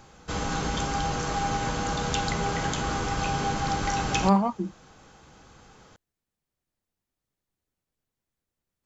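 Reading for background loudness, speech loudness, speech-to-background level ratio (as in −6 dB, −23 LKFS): −28.5 LKFS, −25.5 LKFS, 3.0 dB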